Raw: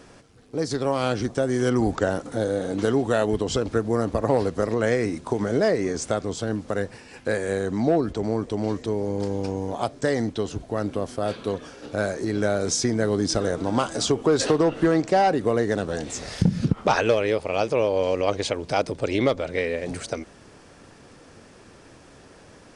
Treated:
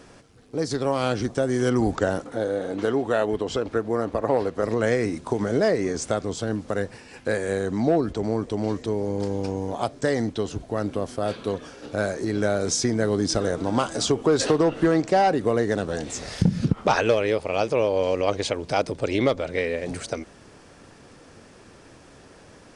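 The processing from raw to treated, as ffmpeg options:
-filter_complex "[0:a]asettb=1/sr,asplit=3[a][b][c];[a]atrim=end=2.244[d];[b]atrim=start=2.24:end=4.64,asetpts=PTS-STARTPTS,afade=t=in:d=0.004:c=qsin,afade=t=out:st=2.396:d=0.004:c=qsin,bass=f=250:g=-7,treble=f=4k:g=-8[e];[c]atrim=start=4.636[f];[d][e]acrossfade=d=0.004:c1=hsin:c2=qsin[g];[g][f]acrossfade=d=0.004:c1=qsin:c2=hsin"

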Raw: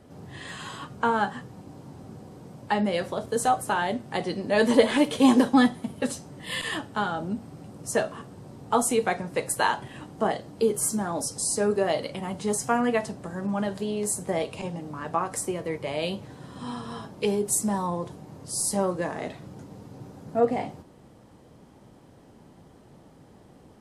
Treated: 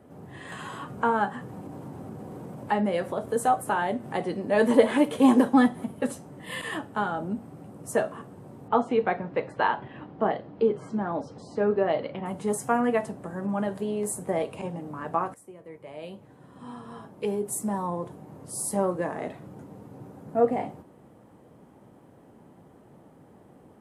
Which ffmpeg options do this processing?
-filter_complex "[0:a]asettb=1/sr,asplit=3[a][b][c];[a]atrim=end=0.524[d];[b]atrim=start=0.52:end=5.9,asetpts=PTS-STARTPTS,afade=t=in:d=0.004:c=qsin,afade=t=out:st=5.376:d=0.004:c=qsin,acompressor=mode=upward:threshold=-30dB:ratio=2.5:attack=3.2:release=140:knee=2.83:detection=peak[e];[c]atrim=start=5.896[f];[d][e]acrossfade=d=0.004:c1=hsin:c2=qsin[g];[g][f]acrossfade=d=0.004:c1=qsin:c2=hsin,asettb=1/sr,asplit=3[h][i][j];[h]atrim=end=8.684[k];[i]atrim=start=8.68:end=12.26,asetpts=PTS-STARTPTS,afade=t=in:d=0.004:c=qsin,afade=t=out:st=3.576:d=0.004:c=qsin,lowpass=f=4.1k:w=0.5412,lowpass=f=4.1k:w=1.3066[l];[j]atrim=start=12.256[m];[k][l]acrossfade=d=0.004:c1=hsin:c2=qsin[n];[n][m]acrossfade=d=0.004:c1=qsin:c2=hsin,asplit=2[o][p];[o]atrim=end=15.34,asetpts=PTS-STARTPTS,afade=t=out:st=15.336:d=0.004:c=hsin:silence=0.105925[q];[p]atrim=start=15.34,asetpts=PTS-STARTPTS,afade=t=in:d=3.03:silence=0.105925[r];[q][r]concat=n=2:v=0:a=1,highpass=f=140:p=1,equalizer=f=4.9k:w=0.76:g=-13,volume=1dB"

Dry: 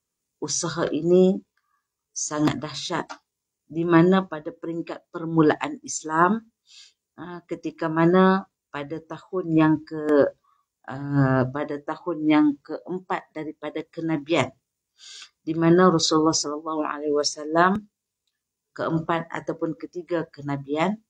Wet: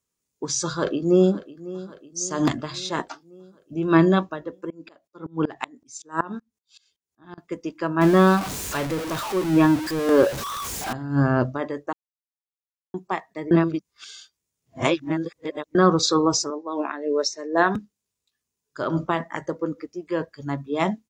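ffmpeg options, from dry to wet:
-filter_complex "[0:a]asplit=2[a][b];[b]afade=t=in:st=0.64:d=0.01,afade=t=out:st=1.36:d=0.01,aecho=0:1:550|1100|1650|2200|2750|3300:0.141254|0.0847523|0.0508514|0.0305108|0.0183065|0.0109839[c];[a][c]amix=inputs=2:normalize=0,asettb=1/sr,asplit=3[d][e][f];[d]atrim=end=4.704[g];[e]atrim=start=4.7:end=7.38,asetpts=PTS-STARTPTS,afade=t=in:d=0.004:c=qsin,afade=t=out:st=2.676:d=0.004:c=qsin,aeval=exprs='val(0)*pow(10,-26*if(lt(mod(-5.3*n/s,1),2*abs(-5.3)/1000),1-mod(-5.3*n/s,1)/(2*abs(-5.3)/1000),(mod(-5.3*n/s,1)-2*abs(-5.3)/1000)/(1-2*abs(-5.3)/1000))/20)':c=same[h];[f]atrim=start=7.376[i];[g][h]acrossfade=d=0.004:c1=hsin:c2=qsin[j];[j][i]acrossfade=d=0.004:c1=qsin:c2=hsin,asettb=1/sr,asplit=3[k][l][m];[k]atrim=end=8.014[n];[l]atrim=start=8.01:end=10.93,asetpts=PTS-STARTPTS,afade=t=in:d=0.004:c=qsin,afade=t=out:st=2.916:d=0.004:c=qsin,aeval=exprs='val(0)+0.5*0.0596*sgn(val(0))':c=same[o];[m]atrim=start=10.926[p];[n][o]acrossfade=d=0.004:c1=hsin:c2=qsin[q];[q][p]acrossfade=d=0.004:c1=qsin:c2=hsin,asettb=1/sr,asplit=3[r][s][t];[r]atrim=end=16.504[u];[s]atrim=start=16.5:end=17.75,asetpts=PTS-STARTPTS,afade=t=in:d=0.004:c=qsin,afade=t=out:st=1.246:d=0.004:c=qsin,highpass=f=210:w=0.5412,highpass=f=210:w=1.3066,equalizer=f=1.2k:t=q:w=4:g=-6,equalizer=f=1.9k:t=q:w=4:g=5,equalizer=f=3k:t=q:w=4:g=-8,lowpass=f=6.6k:w=0.5412,lowpass=f=6.6k:w=1.3066[v];[t]atrim=start=17.746[w];[u][v]acrossfade=d=0.004:c1=hsin:c2=qsin[x];[x][w]acrossfade=d=0.004:c1=qsin:c2=hsin,asplit=5[y][z][aa][ab][ac];[y]atrim=end=11.93,asetpts=PTS-STARTPTS,afade=t=out:st=11.926:d=0.004:c=hsin[ad];[z]atrim=start=11.93:end=12.94,asetpts=PTS-STARTPTS,volume=0[ae];[aa]atrim=start=12.94:end=13.512,asetpts=PTS-STARTPTS,afade=t=in:d=0.004:c=hsin[af];[ab]atrim=start=13.508:end=15.752,asetpts=PTS-STARTPTS,areverse[ag];[ac]atrim=start=15.748[ah];[ad][ae][af]concat=n=3:v=0:a=1[ai];[ai][ag]acrossfade=d=0.004:c1=hsin:c2=hsin[aj];[aj][ah]acrossfade=d=0.004:c1=hsin:c2=hsin"

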